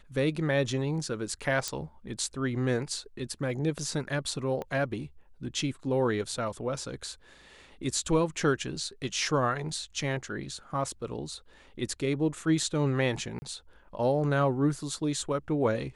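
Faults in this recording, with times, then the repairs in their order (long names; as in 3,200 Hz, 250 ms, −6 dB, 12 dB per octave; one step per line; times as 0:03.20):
0:01.68: click −15 dBFS
0:04.62: click −23 dBFS
0:13.39–0:13.42: drop-out 30 ms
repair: click removal
repair the gap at 0:13.39, 30 ms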